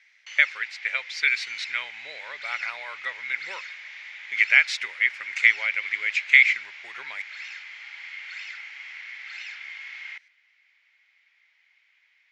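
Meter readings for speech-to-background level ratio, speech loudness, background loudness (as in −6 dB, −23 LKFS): 15.0 dB, −22.5 LKFS, −37.5 LKFS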